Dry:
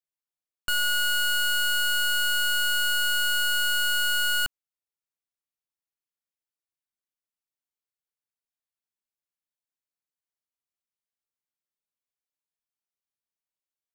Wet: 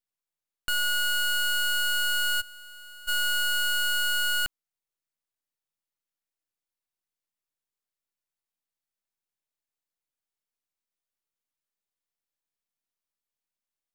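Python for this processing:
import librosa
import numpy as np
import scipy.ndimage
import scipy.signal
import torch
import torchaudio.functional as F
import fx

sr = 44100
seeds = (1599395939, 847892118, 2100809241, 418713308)

y = fx.comb(x, sr, ms=6.4, depth=0.9, at=(2.4, 3.07), fade=0.02)
y = np.maximum(y, 0.0)
y = y * librosa.db_to_amplitude(4.5)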